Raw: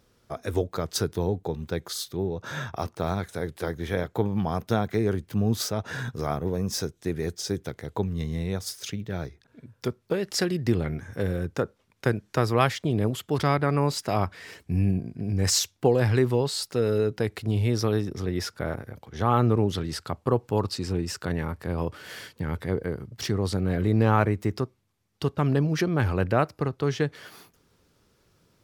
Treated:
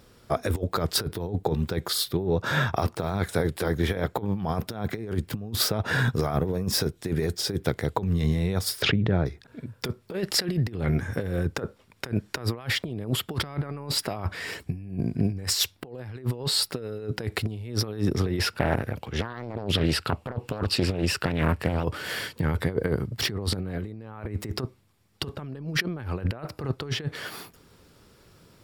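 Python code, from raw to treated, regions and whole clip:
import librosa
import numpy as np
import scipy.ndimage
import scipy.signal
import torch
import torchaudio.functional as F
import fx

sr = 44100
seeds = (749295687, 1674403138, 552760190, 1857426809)

y = fx.chain(x, sr, fx.spacing_loss(db_at_10k=35),
    fx.pre_swell(db_per_s=22.0), at=(8.82, 9.26))
y = fx.chain(y, sr, fx.peak_eq(hz=2700.0, db=10.0, octaves=0.32),
    fx.doppler_dist(depth_ms=0.98), at=(18.39, 21.84))
y = fx.notch(y, sr, hz=6200.0, q=9.3)
y = fx.dynamic_eq(y, sr, hz=6900.0, q=1.6, threshold_db=-50.0, ratio=4.0, max_db=-7)
y = fx.over_compress(y, sr, threshold_db=-30.0, ratio=-0.5)
y = y * librosa.db_to_amplitude(4.0)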